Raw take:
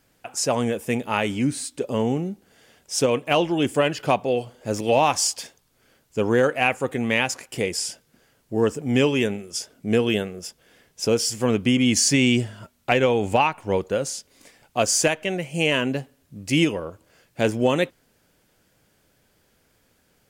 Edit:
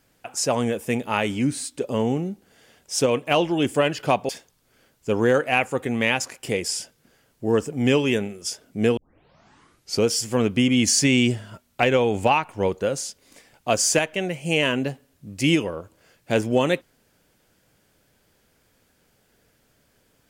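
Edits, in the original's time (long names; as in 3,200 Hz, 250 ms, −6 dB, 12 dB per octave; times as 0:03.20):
0:04.29–0:05.38: remove
0:10.06: tape start 1.08 s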